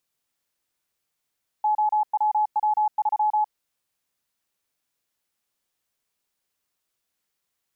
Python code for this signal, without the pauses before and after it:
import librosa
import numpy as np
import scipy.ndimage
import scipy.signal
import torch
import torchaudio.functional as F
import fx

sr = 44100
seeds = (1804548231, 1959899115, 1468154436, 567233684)

y = fx.morse(sr, text='OWW3', wpm=34, hz=850.0, level_db=-18.0)